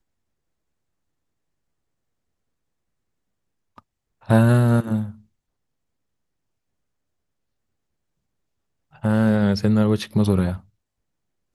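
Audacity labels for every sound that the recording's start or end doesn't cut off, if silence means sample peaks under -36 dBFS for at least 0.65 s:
3.780000	5.110000	sound
9.030000	10.590000	sound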